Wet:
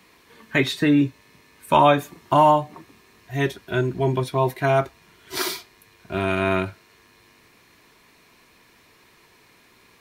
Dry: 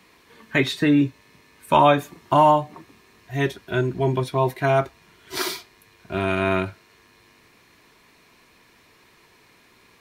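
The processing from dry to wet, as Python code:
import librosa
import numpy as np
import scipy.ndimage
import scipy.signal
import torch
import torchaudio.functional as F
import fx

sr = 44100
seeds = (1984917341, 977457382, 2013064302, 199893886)

y = fx.high_shelf(x, sr, hz=9500.0, db=3.5)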